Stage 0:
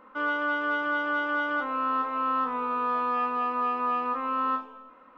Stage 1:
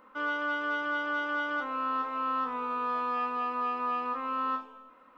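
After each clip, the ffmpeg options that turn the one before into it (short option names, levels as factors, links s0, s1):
-af "highshelf=f=4300:g=10.5,volume=0.596"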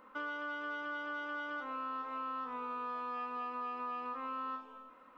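-af "acompressor=threshold=0.0158:ratio=5,volume=0.841"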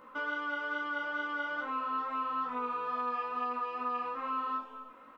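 -filter_complex "[0:a]flanger=delay=16:depth=2.4:speed=2.3,asplit=2[s0][s1];[s1]adelay=43,volume=0.237[s2];[s0][s2]amix=inputs=2:normalize=0,volume=2.37"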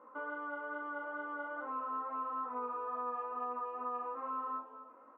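-af "asuperpass=centerf=580:order=4:qfactor=0.66,volume=0.841"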